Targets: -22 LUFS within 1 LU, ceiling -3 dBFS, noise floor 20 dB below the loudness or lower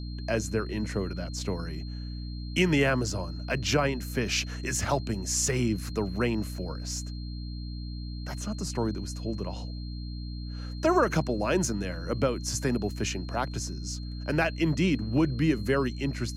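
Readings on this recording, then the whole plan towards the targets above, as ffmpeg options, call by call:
hum 60 Hz; harmonics up to 300 Hz; hum level -34 dBFS; steady tone 4200 Hz; tone level -48 dBFS; loudness -29.5 LUFS; peak -11.5 dBFS; loudness target -22.0 LUFS
-> -af "bandreject=f=60:t=h:w=4,bandreject=f=120:t=h:w=4,bandreject=f=180:t=h:w=4,bandreject=f=240:t=h:w=4,bandreject=f=300:t=h:w=4"
-af "bandreject=f=4.2k:w=30"
-af "volume=7.5dB"

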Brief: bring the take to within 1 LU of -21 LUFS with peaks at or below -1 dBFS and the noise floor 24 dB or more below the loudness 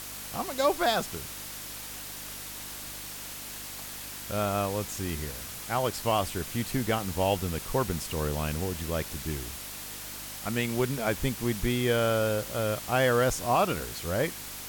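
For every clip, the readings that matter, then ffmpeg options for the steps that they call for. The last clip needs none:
hum 50 Hz; harmonics up to 300 Hz; hum level -48 dBFS; noise floor -40 dBFS; noise floor target -54 dBFS; loudness -30.0 LUFS; peak -12.5 dBFS; loudness target -21.0 LUFS
-> -af "bandreject=f=50:t=h:w=4,bandreject=f=100:t=h:w=4,bandreject=f=150:t=h:w=4,bandreject=f=200:t=h:w=4,bandreject=f=250:t=h:w=4,bandreject=f=300:t=h:w=4"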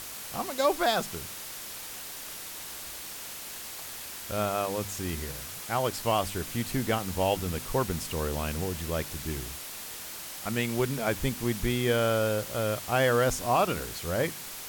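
hum none; noise floor -41 dBFS; noise floor target -54 dBFS
-> -af "afftdn=nr=13:nf=-41"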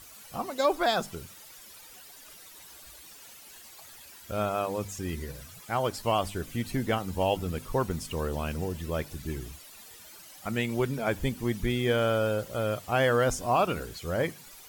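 noise floor -50 dBFS; noise floor target -54 dBFS
-> -af "afftdn=nr=6:nf=-50"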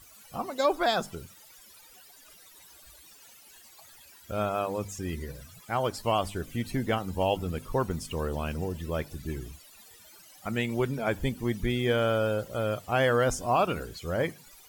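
noise floor -54 dBFS; loudness -29.5 LUFS; peak -13.5 dBFS; loudness target -21.0 LUFS
-> -af "volume=8.5dB"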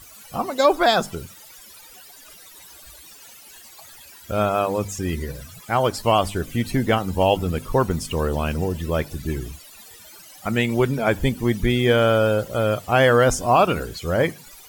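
loudness -21.0 LUFS; peak -5.0 dBFS; noise floor -46 dBFS

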